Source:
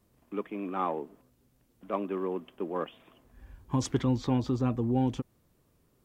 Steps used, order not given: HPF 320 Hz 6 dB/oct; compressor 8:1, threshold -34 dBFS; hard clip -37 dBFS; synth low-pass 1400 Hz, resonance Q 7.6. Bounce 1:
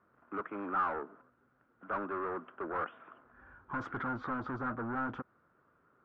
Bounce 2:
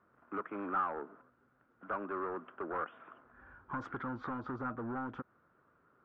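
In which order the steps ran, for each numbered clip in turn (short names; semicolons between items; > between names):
HPF > hard clip > compressor > synth low-pass; HPF > compressor > hard clip > synth low-pass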